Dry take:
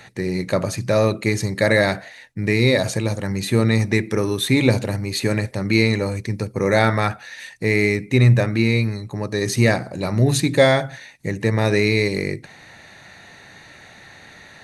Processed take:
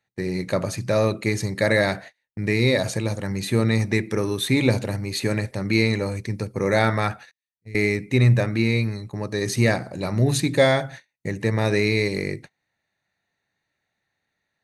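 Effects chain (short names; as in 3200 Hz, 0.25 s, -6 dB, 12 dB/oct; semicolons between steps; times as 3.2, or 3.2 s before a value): 7.31–7.75 passive tone stack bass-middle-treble 10-0-1; gate -35 dBFS, range -31 dB; gain -3 dB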